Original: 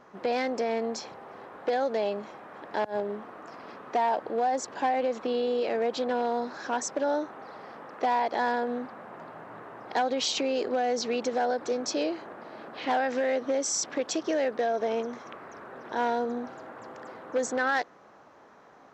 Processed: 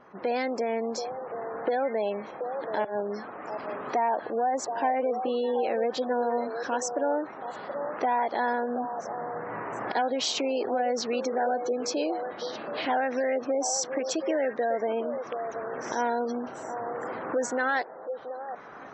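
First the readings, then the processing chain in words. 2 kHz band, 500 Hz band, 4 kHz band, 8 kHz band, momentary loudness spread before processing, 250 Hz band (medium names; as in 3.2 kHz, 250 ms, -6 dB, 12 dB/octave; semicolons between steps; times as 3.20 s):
+0.5 dB, +1.0 dB, -0.5 dB, 0.0 dB, 17 LU, +0.5 dB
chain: recorder AGC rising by 9.3 dB/s; repeats whose band climbs or falls 728 ms, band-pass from 610 Hz, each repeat 1.4 oct, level -6 dB; spectral gate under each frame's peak -30 dB strong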